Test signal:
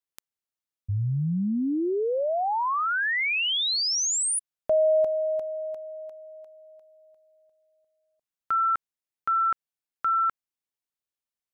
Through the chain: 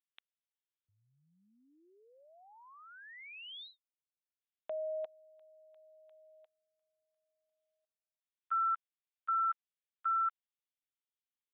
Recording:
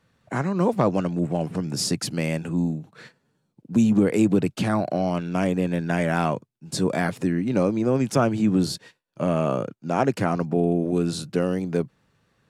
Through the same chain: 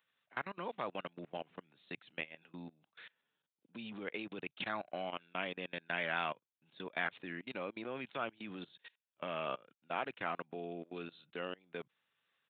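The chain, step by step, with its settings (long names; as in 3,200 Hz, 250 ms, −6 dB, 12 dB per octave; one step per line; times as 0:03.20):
output level in coarse steps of 24 dB
downsampling to 8,000 Hz
first difference
level +7.5 dB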